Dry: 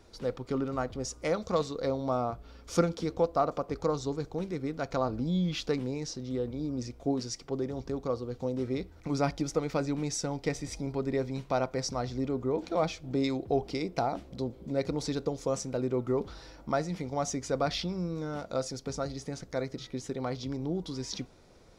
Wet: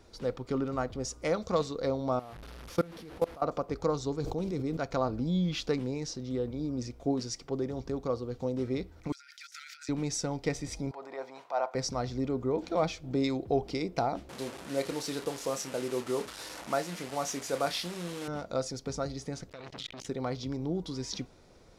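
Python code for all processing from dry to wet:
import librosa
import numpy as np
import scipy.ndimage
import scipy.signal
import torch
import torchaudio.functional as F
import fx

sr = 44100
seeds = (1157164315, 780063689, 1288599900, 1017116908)

y = fx.chain(x, sr, fx.delta_mod(bps=64000, step_db=-32.5),
    fx.peak_eq(hz=7700.0, db=-10.0, octaves=0.91),
    fx.level_steps(step_db=23), at=(2.19, 3.42))
y = fx.chain(y, sr, fx.peak_eq(hz=1700.0, db=-8.5, octaves=0.89),
    fx.sustainer(db_per_s=24.0), at=(4.2, 4.77))
y = fx.chain(y, sr, fx.brickwall_highpass(low_hz=1300.0),
    fx.high_shelf(hz=4500.0, db=2.0),
    fx.over_compress(threshold_db=-51.0, ratio=-1.0), at=(9.12, 9.89))
y = fx.chain(y, sr, fx.high_shelf(hz=2400.0, db=-9.0),
    fx.transient(attack_db=-10, sustain_db=3),
    fx.highpass_res(hz=780.0, q=2.2), at=(10.91, 11.75))
y = fx.chain(y, sr, fx.delta_mod(bps=64000, step_db=-35.0),
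    fx.highpass(hz=380.0, slope=6),
    fx.doubler(ms=29.0, db=-11), at=(14.29, 18.28))
y = fx.chain(y, sr, fx.peak_eq(hz=3000.0, db=14.5, octaves=1.0),
    fx.over_compress(threshold_db=-38.0, ratio=-1.0),
    fx.transformer_sat(knee_hz=3600.0), at=(19.49, 20.06))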